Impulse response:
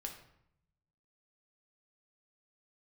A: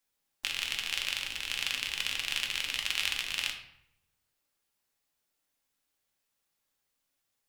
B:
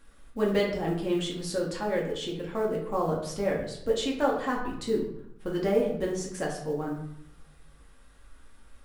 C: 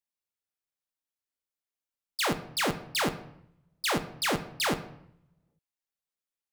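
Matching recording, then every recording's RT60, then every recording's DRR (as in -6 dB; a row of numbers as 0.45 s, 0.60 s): A; 0.75 s, 0.75 s, 0.75 s; 1.5 dB, -3.0 dB, 8.0 dB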